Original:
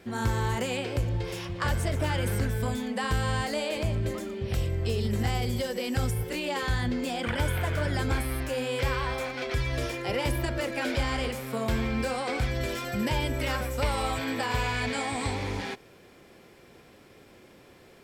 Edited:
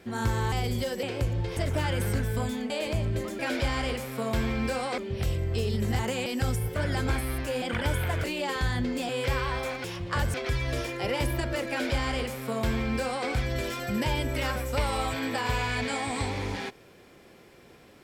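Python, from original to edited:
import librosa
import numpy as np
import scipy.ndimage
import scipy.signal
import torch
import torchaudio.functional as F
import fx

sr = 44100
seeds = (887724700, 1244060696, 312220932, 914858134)

y = fx.edit(x, sr, fx.swap(start_s=0.52, length_s=0.27, other_s=5.3, other_length_s=0.51),
    fx.move(start_s=1.33, length_s=0.5, to_s=9.39),
    fx.cut(start_s=2.96, length_s=0.64),
    fx.swap(start_s=6.31, length_s=0.85, other_s=7.78, other_length_s=0.86),
    fx.duplicate(start_s=10.74, length_s=1.59, to_s=4.29), tone=tone)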